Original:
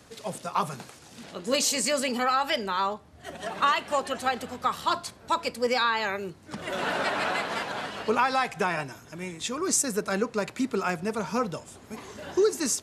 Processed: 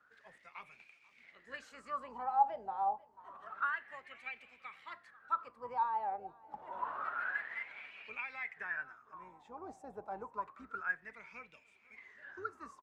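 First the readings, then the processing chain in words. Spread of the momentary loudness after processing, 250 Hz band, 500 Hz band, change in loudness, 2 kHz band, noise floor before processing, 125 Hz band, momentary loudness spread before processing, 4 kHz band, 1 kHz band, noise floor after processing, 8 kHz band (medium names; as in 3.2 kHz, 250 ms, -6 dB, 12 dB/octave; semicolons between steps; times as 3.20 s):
18 LU, -26.5 dB, -22.0 dB, -12.0 dB, -9.5 dB, -51 dBFS, under -25 dB, 14 LU, -29.5 dB, -9.0 dB, -67 dBFS, under -40 dB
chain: octave divider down 2 oct, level -3 dB; dynamic bell 4.9 kHz, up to -5 dB, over -43 dBFS, Q 0.95; feedback delay 488 ms, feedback 45%, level -21 dB; wah-wah 0.28 Hz 770–2400 Hz, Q 17; bass shelf 450 Hz +11 dB; trim +2 dB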